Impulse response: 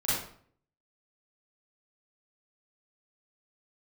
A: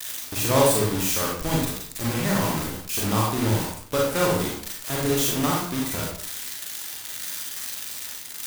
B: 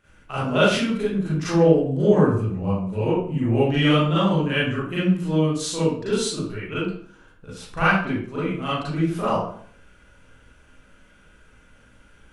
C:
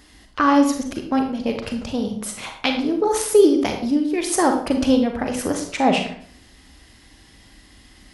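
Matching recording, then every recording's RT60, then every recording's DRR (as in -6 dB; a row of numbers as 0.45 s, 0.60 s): B; 0.55 s, 0.55 s, 0.55 s; -3.0 dB, -11.0 dB, 4.0 dB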